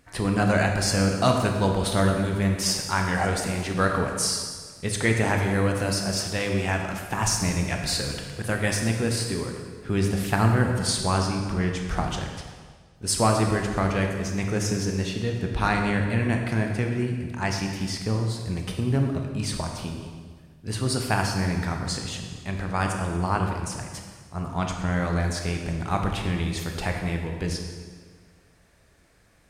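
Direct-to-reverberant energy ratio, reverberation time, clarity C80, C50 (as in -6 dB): 2.5 dB, 1.7 s, 5.5 dB, 4.0 dB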